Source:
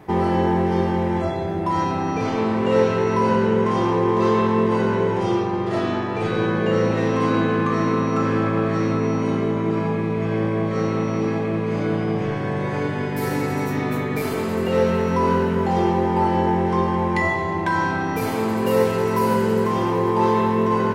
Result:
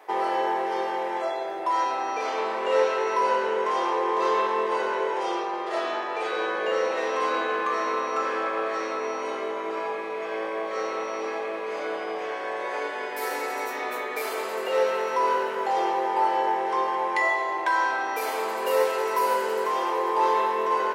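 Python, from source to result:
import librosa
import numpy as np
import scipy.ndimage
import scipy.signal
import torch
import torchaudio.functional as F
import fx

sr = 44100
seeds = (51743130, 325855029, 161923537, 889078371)

y = scipy.signal.sosfilt(scipy.signal.butter(4, 480.0, 'highpass', fs=sr, output='sos'), x)
y = y * 10.0 ** (-1.0 / 20.0)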